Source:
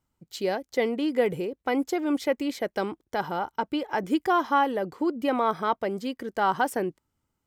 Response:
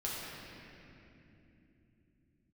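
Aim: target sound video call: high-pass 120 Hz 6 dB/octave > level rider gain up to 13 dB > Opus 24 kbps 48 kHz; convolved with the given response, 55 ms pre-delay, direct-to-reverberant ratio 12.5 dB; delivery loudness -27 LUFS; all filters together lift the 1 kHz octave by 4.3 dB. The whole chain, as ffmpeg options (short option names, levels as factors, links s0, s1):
-filter_complex "[0:a]equalizer=f=1000:t=o:g=5.5,asplit=2[s0][s1];[1:a]atrim=start_sample=2205,adelay=55[s2];[s1][s2]afir=irnorm=-1:irlink=0,volume=0.15[s3];[s0][s3]amix=inputs=2:normalize=0,highpass=f=120:p=1,dynaudnorm=m=4.47,volume=0.794" -ar 48000 -c:a libopus -b:a 24k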